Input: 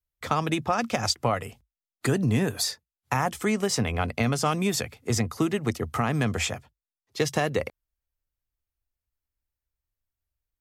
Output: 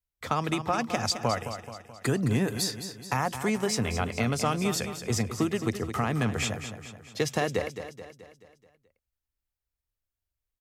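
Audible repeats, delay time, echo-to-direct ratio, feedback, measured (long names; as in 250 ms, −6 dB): 5, 215 ms, −8.5 dB, 51%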